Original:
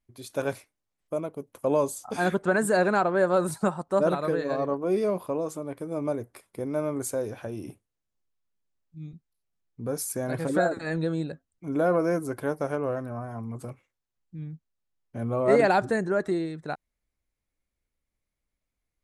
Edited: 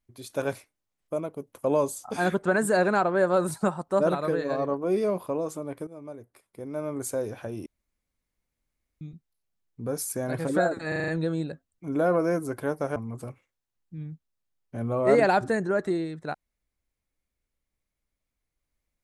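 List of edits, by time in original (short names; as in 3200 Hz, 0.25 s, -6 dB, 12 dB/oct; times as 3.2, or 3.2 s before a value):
5.87–7.15 fade in quadratic, from -13 dB
7.66–9.01 room tone
10.88 stutter 0.04 s, 6 plays
12.76–13.37 cut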